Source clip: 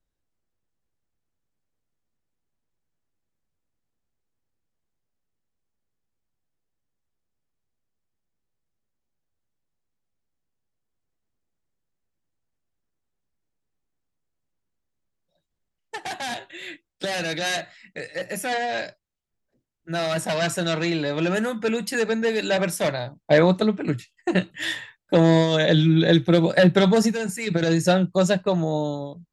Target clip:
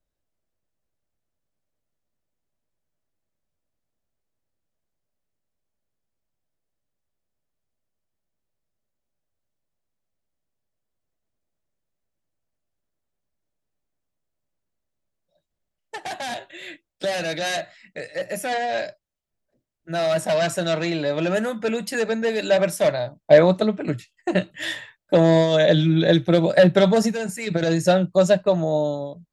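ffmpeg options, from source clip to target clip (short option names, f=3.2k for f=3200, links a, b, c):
-af "equalizer=f=610:w=4.3:g=8,volume=-1dB"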